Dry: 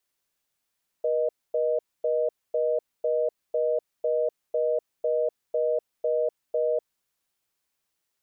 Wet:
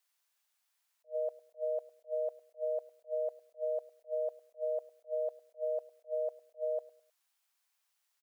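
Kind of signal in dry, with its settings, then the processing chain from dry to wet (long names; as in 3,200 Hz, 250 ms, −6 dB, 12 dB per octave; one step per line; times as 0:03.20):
call progress tone reorder tone, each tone −24.5 dBFS 5.75 s
high-pass filter 700 Hz 24 dB per octave
repeating echo 104 ms, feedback 32%, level −20 dB
level that may rise only so fast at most 360 dB per second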